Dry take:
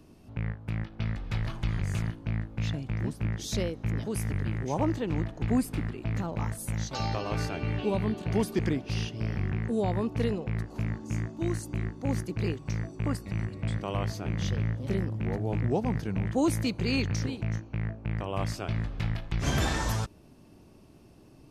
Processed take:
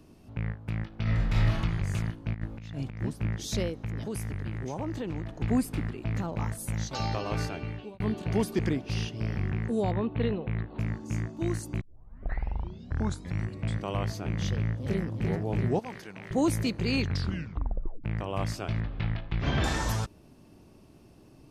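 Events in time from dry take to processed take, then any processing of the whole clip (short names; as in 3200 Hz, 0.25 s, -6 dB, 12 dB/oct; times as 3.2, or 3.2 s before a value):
1.02–1.57 reverb throw, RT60 0.9 s, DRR -5 dB
2.34–3.02 negative-ratio compressor -35 dBFS, ratio -0.5
3.74–5.38 compressor, threshold -29 dBFS
7.41–8 fade out
9.91–10.79 steep low-pass 4100 Hz 96 dB/oct
11.81 tape start 1.63 s
14.51–15.14 echo throw 0.34 s, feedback 75%, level -5.5 dB
15.79–16.31 HPF 1100 Hz 6 dB/oct
17.03 tape stop 1.01 s
18.8–19.64 LPF 4000 Hz 24 dB/oct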